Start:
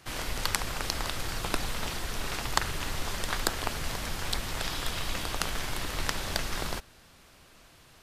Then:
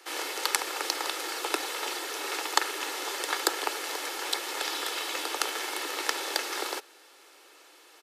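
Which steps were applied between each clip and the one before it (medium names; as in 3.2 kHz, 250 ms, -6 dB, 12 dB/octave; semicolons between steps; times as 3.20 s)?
steep high-pass 290 Hz 72 dB/octave; comb 2.3 ms, depth 42%; trim +2 dB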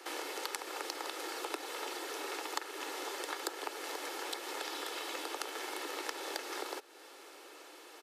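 tilt shelf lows +3.5 dB; compression 2.5:1, threshold -45 dBFS, peak gain reduction 17.5 dB; trim +3 dB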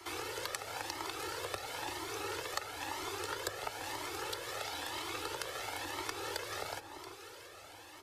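octave divider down 2 oct, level -6 dB; echo whose repeats swap between lows and highs 340 ms, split 1.5 kHz, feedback 56%, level -7.5 dB; Shepard-style flanger rising 1 Hz; trim +4 dB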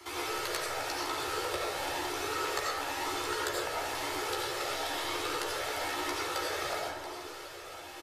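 reverse; upward compressor, threshold -47 dBFS; reverse; doubling 14 ms -5 dB; reverberation RT60 1.0 s, pre-delay 50 ms, DRR -4 dB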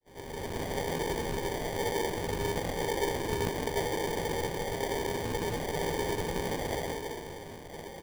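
fade-in on the opening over 0.63 s; small resonant body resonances 900/1500 Hz, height 16 dB, ringing for 20 ms; sample-and-hold 33×; trim -5 dB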